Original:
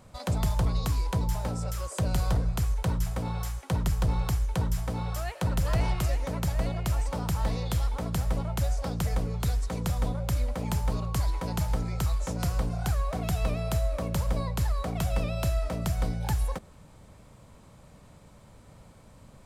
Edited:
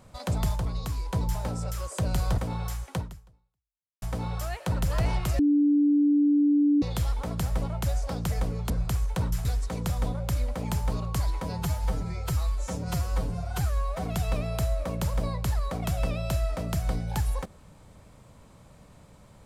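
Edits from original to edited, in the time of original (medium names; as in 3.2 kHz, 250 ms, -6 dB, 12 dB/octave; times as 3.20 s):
0.56–1.13 s: gain -4 dB
2.38–3.13 s: move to 9.45 s
3.70–4.77 s: fade out exponential
6.14–7.57 s: bleep 291 Hz -18 dBFS
11.44–13.18 s: stretch 1.5×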